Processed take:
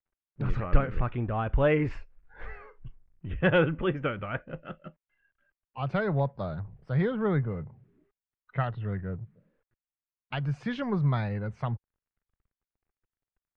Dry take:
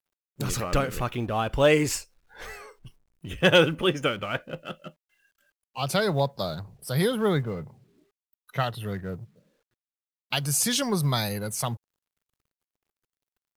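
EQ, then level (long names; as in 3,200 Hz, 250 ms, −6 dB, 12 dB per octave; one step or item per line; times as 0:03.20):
transistor ladder low-pass 2,500 Hz, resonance 25%
low-shelf EQ 81 Hz +11 dB
low-shelf EQ 210 Hz +5 dB
0.0 dB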